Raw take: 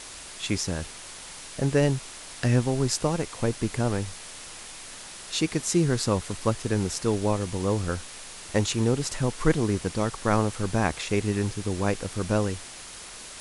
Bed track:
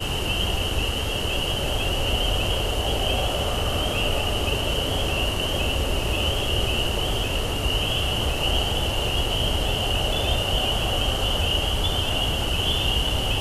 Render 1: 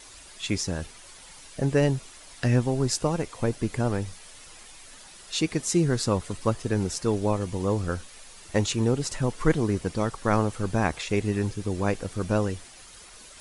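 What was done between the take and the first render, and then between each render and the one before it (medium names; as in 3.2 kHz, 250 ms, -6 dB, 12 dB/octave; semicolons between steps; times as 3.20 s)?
noise reduction 9 dB, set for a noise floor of -42 dBFS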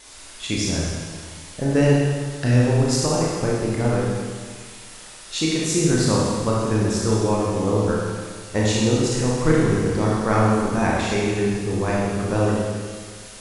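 Schroeder reverb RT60 1.7 s, combs from 25 ms, DRR -5 dB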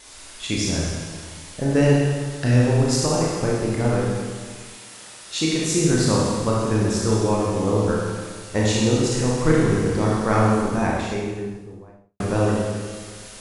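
4.75–5.52 s: high-pass 140 Hz -> 49 Hz; 10.46–12.20 s: studio fade out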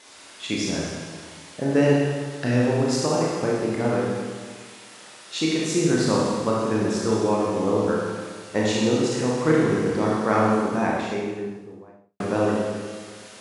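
high-pass 180 Hz 12 dB/octave; treble shelf 6.8 kHz -11 dB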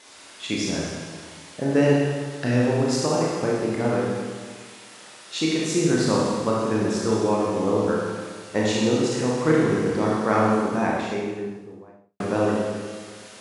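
no audible change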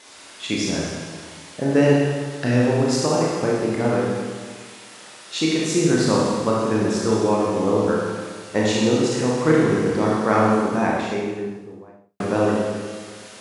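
trim +2.5 dB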